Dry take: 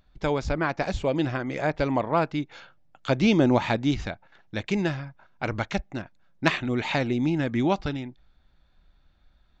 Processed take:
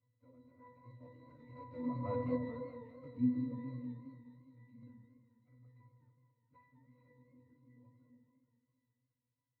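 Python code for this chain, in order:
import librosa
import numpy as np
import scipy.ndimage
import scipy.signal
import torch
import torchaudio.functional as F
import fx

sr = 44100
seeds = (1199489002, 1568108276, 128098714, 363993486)

p1 = x + 0.5 * 10.0 ** (-33.5 / 20.0) * np.sign(x)
p2 = fx.doppler_pass(p1, sr, speed_mps=14, closest_m=1.8, pass_at_s=2.19)
p3 = fx.air_absorb(p2, sr, metres=150.0)
p4 = fx.vibrato(p3, sr, rate_hz=2.2, depth_cents=12.0)
p5 = fx.room_shoebox(p4, sr, seeds[0], volume_m3=2100.0, walls='furnished', distance_m=1.9)
p6 = fx.dynamic_eq(p5, sr, hz=200.0, q=5.0, threshold_db=-52.0, ratio=4.0, max_db=7)
p7 = fx.pitch_keep_formants(p6, sr, semitones=-9.5)
p8 = fx.quant_dither(p7, sr, seeds[1], bits=6, dither='none')
p9 = p7 + (p8 * librosa.db_to_amplitude(-11.0))
p10 = scipy.signal.sosfilt(scipy.signal.butter(2, 82.0, 'highpass', fs=sr, output='sos'), p9)
p11 = fx.octave_resonator(p10, sr, note='B', decay_s=0.47)
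p12 = fx.echo_stepped(p11, sr, ms=147, hz=180.0, octaves=1.4, feedback_pct=70, wet_db=-4.0)
p13 = fx.echo_warbled(p12, sr, ms=207, feedback_pct=59, rate_hz=2.8, cents=141, wet_db=-12.0)
y = p13 * librosa.db_to_amplitude(5.0)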